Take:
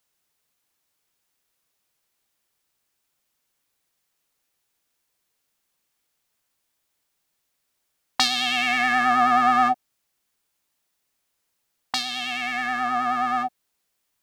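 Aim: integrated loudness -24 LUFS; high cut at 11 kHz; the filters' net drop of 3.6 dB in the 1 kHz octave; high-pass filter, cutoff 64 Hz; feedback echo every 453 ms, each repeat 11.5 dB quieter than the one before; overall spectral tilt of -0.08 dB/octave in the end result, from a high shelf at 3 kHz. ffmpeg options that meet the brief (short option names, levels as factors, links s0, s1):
-af "highpass=64,lowpass=11000,equalizer=f=1000:t=o:g=-4.5,highshelf=f=3000:g=-7,aecho=1:1:453|906|1359:0.266|0.0718|0.0194,volume=1.19"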